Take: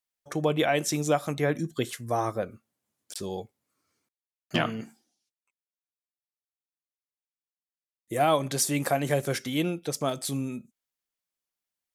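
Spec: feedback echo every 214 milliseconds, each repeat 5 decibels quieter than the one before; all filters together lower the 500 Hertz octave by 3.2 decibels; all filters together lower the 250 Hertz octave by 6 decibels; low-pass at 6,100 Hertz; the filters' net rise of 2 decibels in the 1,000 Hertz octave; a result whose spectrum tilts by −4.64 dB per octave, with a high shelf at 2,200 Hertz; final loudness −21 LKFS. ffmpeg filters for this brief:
ffmpeg -i in.wav -af "lowpass=6100,equalizer=frequency=250:width_type=o:gain=-7,equalizer=frequency=500:width_type=o:gain=-5,equalizer=frequency=1000:width_type=o:gain=8,highshelf=frequency=2200:gain=-9,aecho=1:1:214|428|642|856|1070|1284|1498:0.562|0.315|0.176|0.0988|0.0553|0.031|0.0173,volume=9dB" out.wav

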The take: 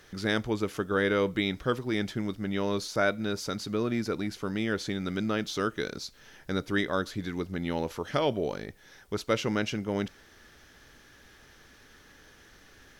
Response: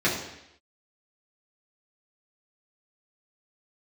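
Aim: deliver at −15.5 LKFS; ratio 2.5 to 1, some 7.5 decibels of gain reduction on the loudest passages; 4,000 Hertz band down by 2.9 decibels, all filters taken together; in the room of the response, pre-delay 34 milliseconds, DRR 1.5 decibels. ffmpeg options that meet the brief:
-filter_complex "[0:a]equalizer=frequency=4000:width_type=o:gain=-3.5,acompressor=threshold=-33dB:ratio=2.5,asplit=2[link_01][link_02];[1:a]atrim=start_sample=2205,adelay=34[link_03];[link_02][link_03]afir=irnorm=-1:irlink=0,volume=-16.5dB[link_04];[link_01][link_04]amix=inputs=2:normalize=0,volume=17.5dB"

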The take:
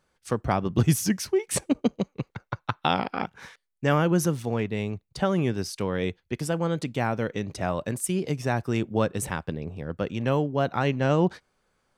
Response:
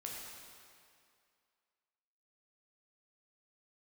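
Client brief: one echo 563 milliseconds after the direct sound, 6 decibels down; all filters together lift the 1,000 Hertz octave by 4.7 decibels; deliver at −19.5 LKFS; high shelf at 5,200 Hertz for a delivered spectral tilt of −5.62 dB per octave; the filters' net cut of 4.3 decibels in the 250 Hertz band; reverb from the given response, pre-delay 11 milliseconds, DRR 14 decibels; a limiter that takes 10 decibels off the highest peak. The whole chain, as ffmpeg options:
-filter_complex "[0:a]equalizer=frequency=250:width_type=o:gain=-7,equalizer=frequency=1000:width_type=o:gain=7,highshelf=frequency=5200:gain=-6.5,alimiter=limit=-15.5dB:level=0:latency=1,aecho=1:1:563:0.501,asplit=2[link_01][link_02];[1:a]atrim=start_sample=2205,adelay=11[link_03];[link_02][link_03]afir=irnorm=-1:irlink=0,volume=-13dB[link_04];[link_01][link_04]amix=inputs=2:normalize=0,volume=9.5dB"

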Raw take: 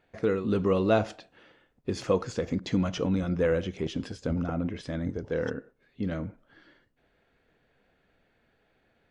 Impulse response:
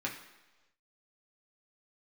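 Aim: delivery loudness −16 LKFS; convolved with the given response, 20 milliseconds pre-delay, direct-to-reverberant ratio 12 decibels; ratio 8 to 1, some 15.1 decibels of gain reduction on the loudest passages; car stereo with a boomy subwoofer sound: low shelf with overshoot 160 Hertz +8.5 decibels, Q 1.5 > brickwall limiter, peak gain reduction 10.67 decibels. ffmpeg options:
-filter_complex "[0:a]acompressor=threshold=-35dB:ratio=8,asplit=2[link_01][link_02];[1:a]atrim=start_sample=2205,adelay=20[link_03];[link_02][link_03]afir=irnorm=-1:irlink=0,volume=-16dB[link_04];[link_01][link_04]amix=inputs=2:normalize=0,lowshelf=frequency=160:width_type=q:width=1.5:gain=8.5,volume=25dB,alimiter=limit=-6dB:level=0:latency=1"

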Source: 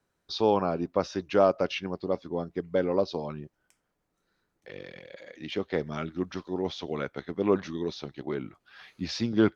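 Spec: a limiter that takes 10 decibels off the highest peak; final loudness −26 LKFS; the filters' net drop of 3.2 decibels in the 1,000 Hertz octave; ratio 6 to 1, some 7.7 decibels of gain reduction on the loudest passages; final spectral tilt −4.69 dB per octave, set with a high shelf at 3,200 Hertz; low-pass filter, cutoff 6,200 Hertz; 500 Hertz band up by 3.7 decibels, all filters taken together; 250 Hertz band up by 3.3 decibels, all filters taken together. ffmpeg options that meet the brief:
ffmpeg -i in.wav -af "lowpass=6200,equalizer=frequency=250:width_type=o:gain=3,equalizer=frequency=500:width_type=o:gain=5.5,equalizer=frequency=1000:width_type=o:gain=-8,highshelf=frequency=3200:gain=4,acompressor=threshold=-22dB:ratio=6,volume=8.5dB,alimiter=limit=-13.5dB:level=0:latency=1" out.wav

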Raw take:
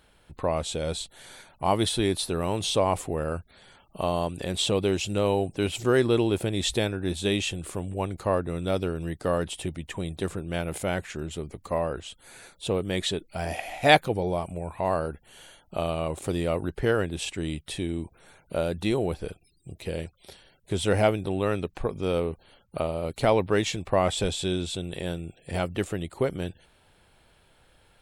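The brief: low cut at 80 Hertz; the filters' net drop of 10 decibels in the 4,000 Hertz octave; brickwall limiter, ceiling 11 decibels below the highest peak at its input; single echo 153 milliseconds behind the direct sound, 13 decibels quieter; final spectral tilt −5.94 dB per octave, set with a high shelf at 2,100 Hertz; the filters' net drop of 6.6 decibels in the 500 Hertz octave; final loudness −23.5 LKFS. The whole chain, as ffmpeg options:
ffmpeg -i in.wav -af "highpass=80,equalizer=frequency=500:width_type=o:gain=-8,highshelf=frequency=2100:gain=-7.5,equalizer=frequency=4000:width_type=o:gain=-5.5,alimiter=limit=-19.5dB:level=0:latency=1,aecho=1:1:153:0.224,volume=10dB" out.wav

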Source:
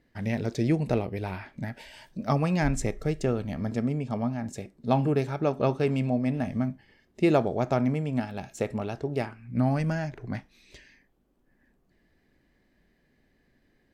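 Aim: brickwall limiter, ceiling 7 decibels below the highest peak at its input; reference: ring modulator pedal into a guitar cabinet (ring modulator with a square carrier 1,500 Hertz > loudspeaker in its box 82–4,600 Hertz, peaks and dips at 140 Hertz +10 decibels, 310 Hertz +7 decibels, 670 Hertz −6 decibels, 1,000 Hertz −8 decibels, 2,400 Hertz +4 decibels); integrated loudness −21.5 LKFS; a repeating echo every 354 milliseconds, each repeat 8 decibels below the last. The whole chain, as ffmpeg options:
ffmpeg -i in.wav -af "alimiter=limit=-17dB:level=0:latency=1,aecho=1:1:354|708|1062|1416|1770:0.398|0.159|0.0637|0.0255|0.0102,aeval=exprs='val(0)*sgn(sin(2*PI*1500*n/s))':channel_layout=same,highpass=82,equalizer=frequency=140:width_type=q:width=4:gain=10,equalizer=frequency=310:width_type=q:width=4:gain=7,equalizer=frequency=670:width_type=q:width=4:gain=-6,equalizer=frequency=1000:width_type=q:width=4:gain=-8,equalizer=frequency=2400:width_type=q:width=4:gain=4,lowpass=frequency=4600:width=0.5412,lowpass=frequency=4600:width=1.3066,volume=6.5dB" out.wav

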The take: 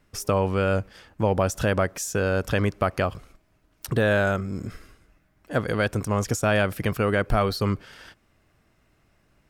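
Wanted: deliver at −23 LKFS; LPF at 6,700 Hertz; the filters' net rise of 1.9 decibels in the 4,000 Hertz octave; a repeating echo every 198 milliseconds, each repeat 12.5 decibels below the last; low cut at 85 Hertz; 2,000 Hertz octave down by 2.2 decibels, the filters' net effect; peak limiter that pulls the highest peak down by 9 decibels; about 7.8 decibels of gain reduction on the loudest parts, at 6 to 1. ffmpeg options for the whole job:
ffmpeg -i in.wav -af "highpass=85,lowpass=6700,equalizer=frequency=2000:width_type=o:gain=-4,equalizer=frequency=4000:width_type=o:gain=4.5,acompressor=threshold=-26dB:ratio=6,alimiter=limit=-23.5dB:level=0:latency=1,aecho=1:1:198|396|594:0.237|0.0569|0.0137,volume=12dB" out.wav

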